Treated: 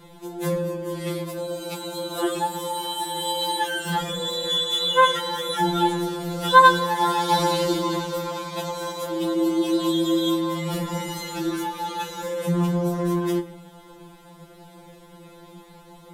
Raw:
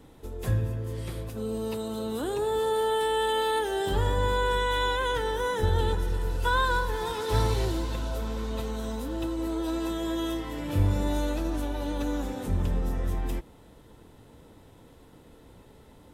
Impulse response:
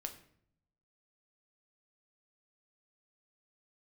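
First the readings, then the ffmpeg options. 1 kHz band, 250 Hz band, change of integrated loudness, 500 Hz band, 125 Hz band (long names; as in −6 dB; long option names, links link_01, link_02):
+8.5 dB, +7.5 dB, +5.5 dB, +3.0 dB, −1.0 dB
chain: -filter_complex "[0:a]asplit=2[link_01][link_02];[link_02]highpass=frequency=110:poles=1[link_03];[1:a]atrim=start_sample=2205[link_04];[link_03][link_04]afir=irnorm=-1:irlink=0,volume=7dB[link_05];[link_01][link_05]amix=inputs=2:normalize=0,afftfilt=real='re*2.83*eq(mod(b,8),0)':imag='im*2.83*eq(mod(b,8),0)':win_size=2048:overlap=0.75,volume=2.5dB"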